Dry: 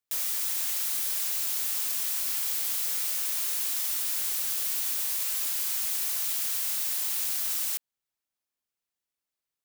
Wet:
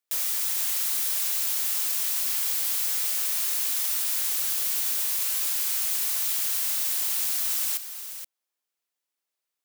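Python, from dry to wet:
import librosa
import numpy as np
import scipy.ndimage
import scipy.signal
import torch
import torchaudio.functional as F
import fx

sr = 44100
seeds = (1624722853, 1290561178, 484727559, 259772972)

y = scipy.signal.sosfilt(scipy.signal.butter(2, 310.0, 'highpass', fs=sr, output='sos'), x)
y = y + 10.0 ** (-10.5 / 20.0) * np.pad(y, (int(474 * sr / 1000.0), 0))[:len(y)]
y = y * 10.0 ** (2.5 / 20.0)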